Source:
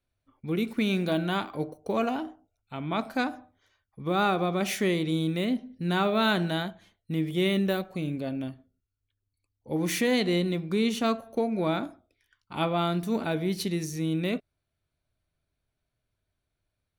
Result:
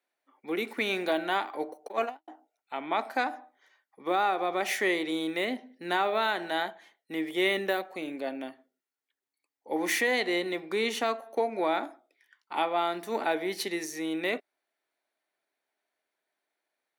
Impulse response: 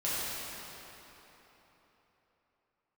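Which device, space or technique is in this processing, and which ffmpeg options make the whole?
laptop speaker: -filter_complex "[0:a]asettb=1/sr,asplit=3[link_01][link_02][link_03];[link_01]atrim=end=1.884[link_04];[link_02]atrim=start=1.88:end=2.28,asetpts=PTS-STARTPTS,afade=type=in:duration=0.004:curve=qsin,afade=type=out:start_time=0.396:duration=0.004:curve=qsin,agate=range=-56dB:threshold=-25dB:ratio=16:detection=peak[link_05];[link_03]atrim=start=2.276[link_06];[link_04][link_05]acrossfade=duration=0.004:curve1=hsin:curve2=qsin[link_07];[link_07][link_06]acrossfade=duration=0.004:curve1=qsin:curve2=hsin,highpass=frequency=310:width=0.5412,highpass=frequency=310:width=1.3066,equalizer=frequency=830:width_type=o:width=0.5:gain=8,equalizer=frequency=1900:width_type=o:width=0.44:gain=9,alimiter=limit=-16.5dB:level=0:latency=1:release=383"

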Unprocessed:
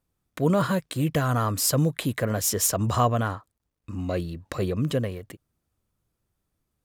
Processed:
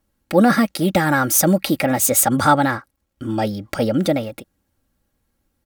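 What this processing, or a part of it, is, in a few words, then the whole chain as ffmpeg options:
nightcore: -af "aecho=1:1:4.4:0.56,asetrate=53361,aresample=44100,volume=7dB"

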